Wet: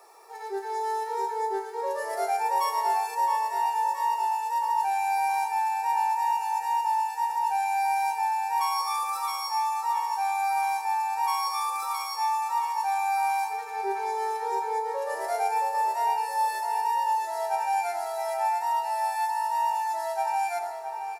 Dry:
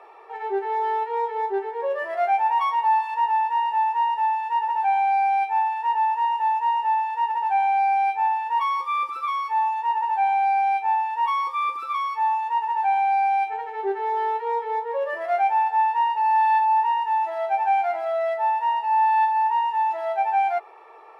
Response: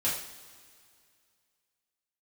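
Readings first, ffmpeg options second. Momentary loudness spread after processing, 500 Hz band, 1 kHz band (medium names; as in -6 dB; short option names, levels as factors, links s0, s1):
5 LU, -5.0 dB, -5.0 dB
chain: -filter_complex "[0:a]aexciter=amount=13.9:drive=8:freq=4700,asplit=2[s0][s1];[s1]adelay=669,lowpass=f=3800:p=1,volume=0.422,asplit=2[s2][s3];[s3]adelay=669,lowpass=f=3800:p=1,volume=0.54,asplit=2[s4][s5];[s5]adelay=669,lowpass=f=3800:p=1,volume=0.54,asplit=2[s6][s7];[s7]adelay=669,lowpass=f=3800:p=1,volume=0.54,asplit=2[s8][s9];[s9]adelay=669,lowpass=f=3800:p=1,volume=0.54,asplit=2[s10][s11];[s11]adelay=669,lowpass=f=3800:p=1,volume=0.54,asplit=2[s12][s13];[s13]adelay=669,lowpass=f=3800:p=1,volume=0.54[s14];[s0][s2][s4][s6][s8][s10][s12][s14]amix=inputs=8:normalize=0,asplit=2[s15][s16];[1:a]atrim=start_sample=2205,adelay=75[s17];[s16][s17]afir=irnorm=-1:irlink=0,volume=0.211[s18];[s15][s18]amix=inputs=2:normalize=0,volume=0.447"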